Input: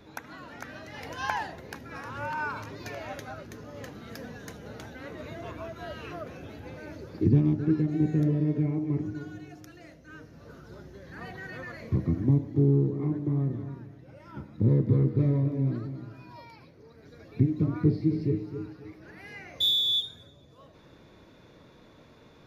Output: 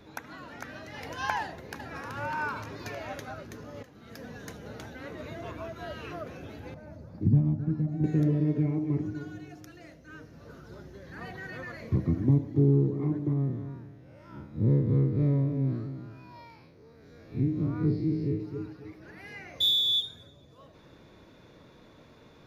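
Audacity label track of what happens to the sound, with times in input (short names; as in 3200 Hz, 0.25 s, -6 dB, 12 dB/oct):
1.410000	2.160000	echo throw 0.38 s, feedback 50%, level -6.5 dB
3.830000	4.390000	fade in, from -15.5 dB
6.740000	8.040000	EQ curve 220 Hz 0 dB, 390 Hz -15 dB, 630 Hz -1 dB, 3000 Hz -17 dB, 5000 Hz -12 dB
13.330000	18.400000	time blur width 89 ms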